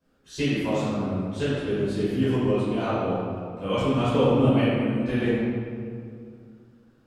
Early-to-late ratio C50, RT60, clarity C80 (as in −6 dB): −3.5 dB, 2.4 s, −1.0 dB